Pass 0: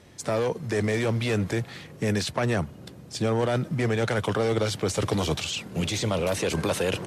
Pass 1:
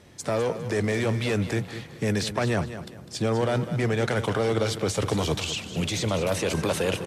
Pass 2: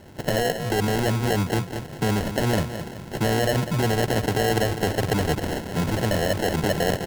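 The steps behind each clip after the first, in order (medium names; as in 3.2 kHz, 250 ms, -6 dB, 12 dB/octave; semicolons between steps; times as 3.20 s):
feedback delay 202 ms, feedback 28%, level -11.5 dB
in parallel at +1 dB: compression, threshold -33 dBFS, peak gain reduction 12.5 dB; on the sum: sample-and-hold 37×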